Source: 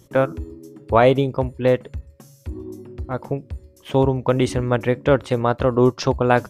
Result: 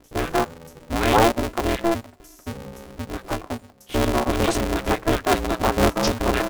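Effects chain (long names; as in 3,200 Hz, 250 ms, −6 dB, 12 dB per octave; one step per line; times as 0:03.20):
bass and treble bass −2 dB, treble +4 dB
three-band delay without the direct sound lows, highs, mids 40/190 ms, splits 420/1,500 Hz
ring modulator with a square carrier 170 Hz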